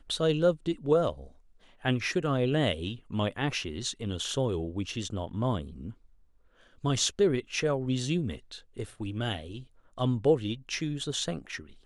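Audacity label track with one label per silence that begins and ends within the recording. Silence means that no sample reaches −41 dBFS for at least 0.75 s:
5.910000	6.840000	silence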